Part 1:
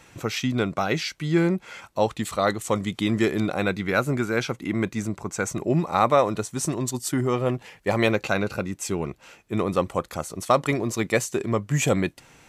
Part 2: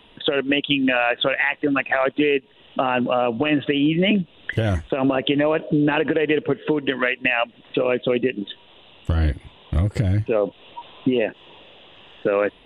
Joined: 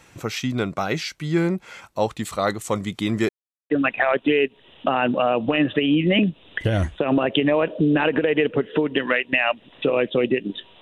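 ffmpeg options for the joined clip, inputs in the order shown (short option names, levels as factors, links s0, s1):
-filter_complex "[0:a]apad=whole_dur=10.81,atrim=end=10.81,asplit=2[s0][s1];[s0]atrim=end=3.29,asetpts=PTS-STARTPTS,afade=t=out:st=3.286:d=0.004:c=hsin[s2];[s1]atrim=start=3.29:end=3.7,asetpts=PTS-STARTPTS,volume=0[s3];[1:a]atrim=start=1.62:end=8.73,asetpts=PTS-STARTPTS,afade=t=in:d=0.004:c=hsin[s4];[s2][s3][s4]concat=n=3:v=0:a=1"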